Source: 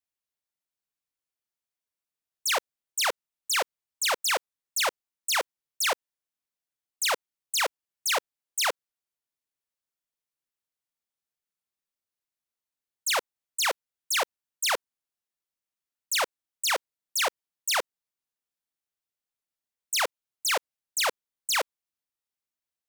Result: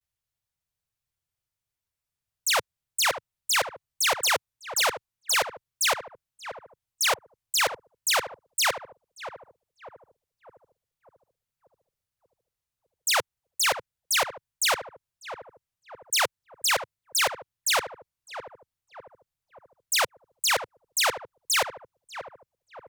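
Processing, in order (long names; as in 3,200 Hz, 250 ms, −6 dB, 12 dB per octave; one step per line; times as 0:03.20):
low shelf with overshoot 170 Hz +13 dB, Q 1.5
feedback echo with a low-pass in the loop 594 ms, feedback 57%, low-pass 960 Hz, level −8.5 dB
pitch vibrato 0.37 Hz 44 cents
level +2.5 dB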